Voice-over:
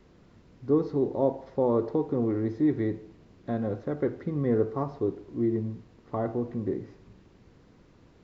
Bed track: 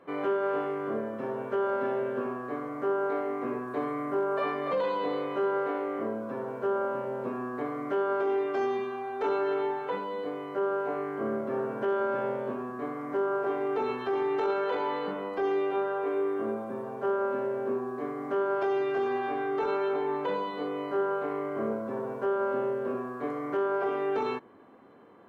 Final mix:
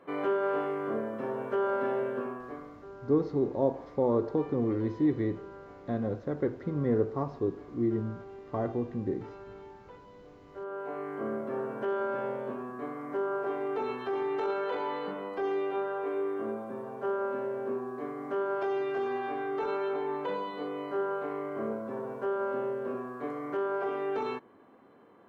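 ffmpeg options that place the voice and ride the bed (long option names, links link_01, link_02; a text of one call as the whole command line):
ffmpeg -i stem1.wav -i stem2.wav -filter_complex "[0:a]adelay=2400,volume=-2dB[link_01];[1:a]volume=15.5dB,afade=type=out:start_time=2.01:duration=0.85:silence=0.11885,afade=type=in:start_time=10.44:duration=0.7:silence=0.158489[link_02];[link_01][link_02]amix=inputs=2:normalize=0" out.wav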